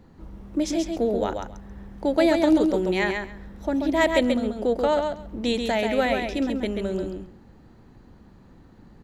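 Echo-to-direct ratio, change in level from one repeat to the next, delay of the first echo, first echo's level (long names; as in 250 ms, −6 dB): −5.0 dB, −16.0 dB, 135 ms, −5.0 dB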